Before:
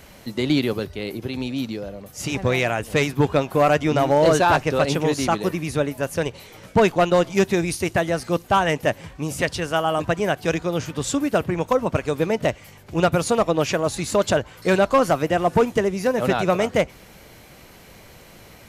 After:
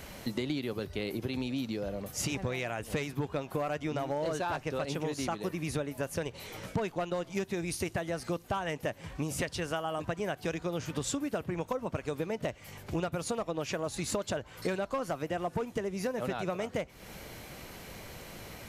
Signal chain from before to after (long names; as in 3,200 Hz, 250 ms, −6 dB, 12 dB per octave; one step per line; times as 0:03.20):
downward compressor 12 to 1, threshold −30 dBFS, peak gain reduction 18 dB